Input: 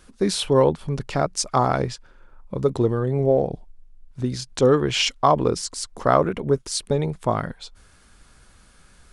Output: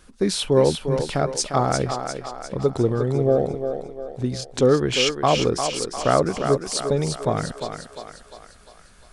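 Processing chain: dynamic bell 1 kHz, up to -7 dB, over -38 dBFS, Q 3.7; thinning echo 351 ms, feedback 52%, high-pass 310 Hz, level -6 dB

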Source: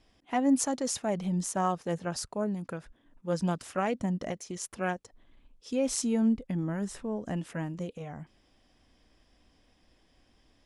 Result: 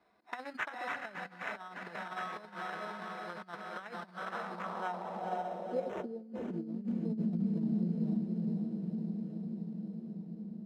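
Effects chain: local Wiener filter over 25 samples; tone controls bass -5 dB, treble -3 dB; comb of notches 270 Hz; echo that smears into a reverb 497 ms, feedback 65%, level -4 dB; sample-rate reducer 4.6 kHz, jitter 0%; peaking EQ 200 Hz +9.5 dB 0.31 oct; compressor with a negative ratio -32 dBFS, ratio -0.5; band-pass sweep 1.6 kHz -> 220 Hz, 4.18–7.17 s; three bands compressed up and down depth 40%; trim +3.5 dB

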